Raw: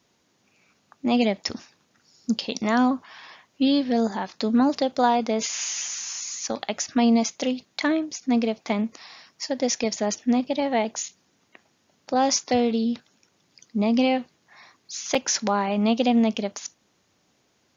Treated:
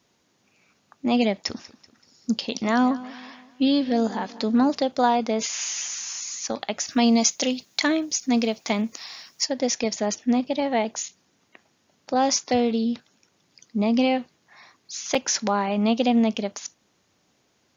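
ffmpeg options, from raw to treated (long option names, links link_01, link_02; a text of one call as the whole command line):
ffmpeg -i in.wav -filter_complex "[0:a]asettb=1/sr,asplit=3[link_01][link_02][link_03];[link_01]atrim=end=1.374[link_04];[link_02]atrim=start=1.37:end=4.73,asetpts=PTS-STARTPTS,afade=type=in:duration=0.004:curve=qsin,afade=type=out:start_time=3.356:duration=0.004:curve=qsin,aecho=1:1:191|382|573|764:0.126|0.0567|0.0255|0.0115,atrim=end_sample=148176[link_05];[link_03]atrim=start=4.726[link_06];[link_04][link_05]acrossfade=duration=0.004:curve1=hsin:curve2=qsin[link_07];[link_07][link_06]acrossfade=duration=0.004:curve1=qsin:curve2=hsin,asplit=3[link_08][link_09][link_10];[link_08]afade=type=out:start_time=6.85:duration=0.02[link_11];[link_09]aemphasis=mode=production:type=75kf,afade=type=in:start_time=6.85:duration=0.02,afade=type=out:start_time=9.44:duration=0.02[link_12];[link_10]afade=type=in:start_time=9.44:duration=0.02[link_13];[link_11][link_12][link_13]amix=inputs=3:normalize=0" out.wav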